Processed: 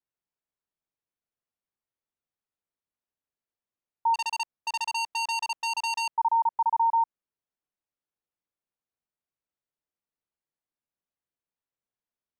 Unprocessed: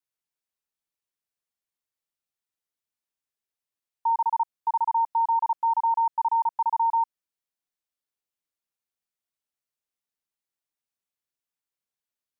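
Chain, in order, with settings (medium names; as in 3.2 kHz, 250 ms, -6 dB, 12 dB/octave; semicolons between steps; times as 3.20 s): low-pass 1 kHz 6 dB/octave; 4.14–6.17 s: transformer saturation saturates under 3.2 kHz; trim +2.5 dB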